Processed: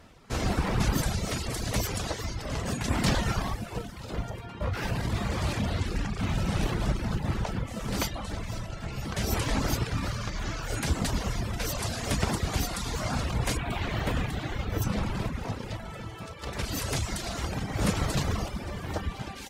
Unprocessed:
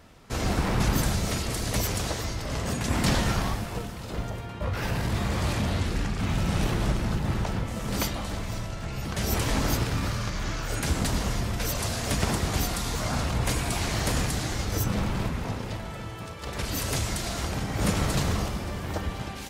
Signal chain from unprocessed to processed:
0:13.57–0:14.82: flat-topped bell 7,400 Hz −12.5 dB
reverb reduction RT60 0.79 s
high-shelf EQ 11,000 Hz −6.5 dB

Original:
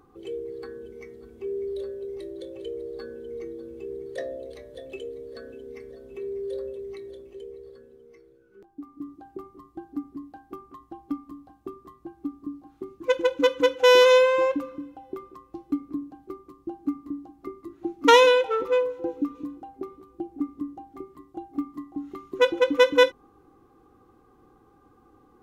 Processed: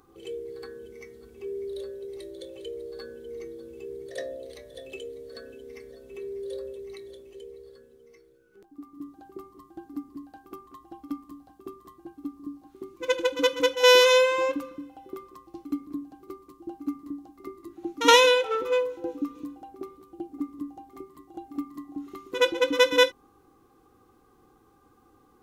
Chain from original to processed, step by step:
high-shelf EQ 2,700 Hz +10.5 dB
backwards echo 70 ms −12.5 dB
level −3.5 dB

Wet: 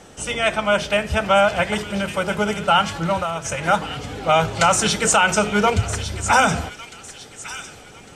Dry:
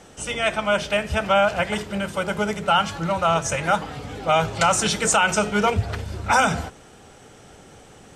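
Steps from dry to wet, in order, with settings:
0:03.17–0:03.66: downward compressor, threshold −24 dBFS, peak gain reduction 9 dB
delay with a high-pass on its return 1,154 ms, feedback 36%, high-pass 2,200 Hz, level −9.5 dB
level +2.5 dB

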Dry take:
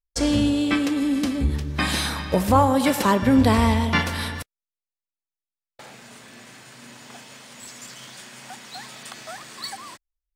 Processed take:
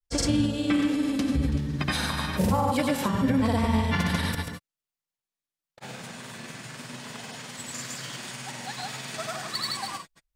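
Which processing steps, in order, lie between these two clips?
parametric band 140 Hz +7.5 dB 0.63 octaves
downward compressor 2.5 to 1, threshold −30 dBFS, peak gain reduction 12 dB
reverb whose tail is shaped and stops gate 150 ms rising, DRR 5 dB
granular cloud, pitch spread up and down by 0 semitones
level +4 dB

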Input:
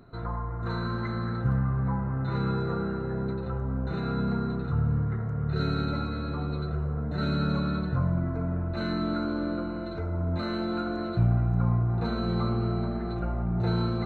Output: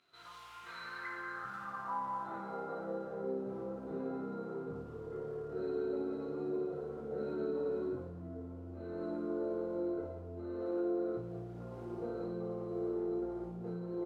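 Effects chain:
on a send: loudspeakers that aren't time-aligned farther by 24 metres −12 dB, 64 metres −5 dB
on the sum: noise that follows the level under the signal 20 dB
multi-voice chorus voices 6, 0.28 Hz, delay 22 ms, depth 3.2 ms
flutter between parallel walls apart 9.8 metres, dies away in 0.66 s
downward compressor 6 to 1, threshold −30 dBFS, peak gain reduction 10.5 dB
band-pass filter sweep 3,000 Hz → 430 Hz, 0:00.38–0:03.24
level +3 dB

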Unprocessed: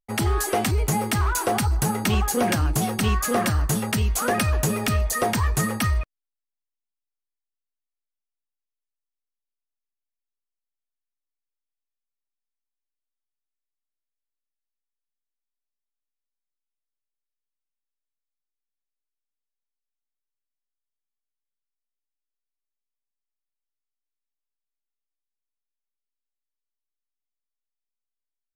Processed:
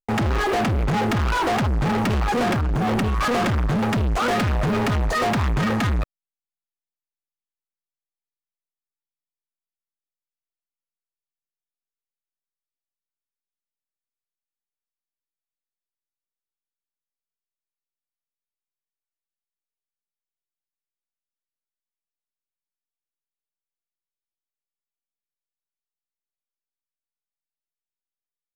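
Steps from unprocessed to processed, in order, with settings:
low-pass filter 1,800 Hz 12 dB per octave
0:02.53–0:03.28: compressor whose output falls as the input rises −28 dBFS, ratio −1
leveller curve on the samples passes 5
brickwall limiter −19 dBFS, peak gain reduction 4.5 dB

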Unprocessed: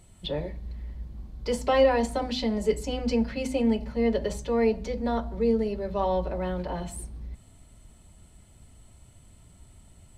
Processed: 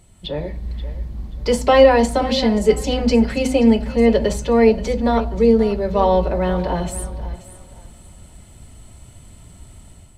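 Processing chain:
automatic gain control gain up to 7.5 dB
feedback echo with a high-pass in the loop 530 ms, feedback 26%, high-pass 230 Hz, level −14.5 dB
level +3 dB

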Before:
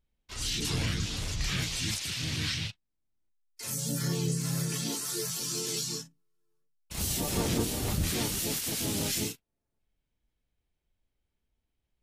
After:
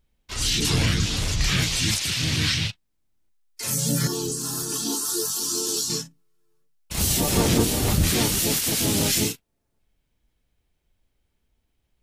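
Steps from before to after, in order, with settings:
0:04.07–0:05.90: phaser with its sweep stopped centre 570 Hz, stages 6
level +9 dB

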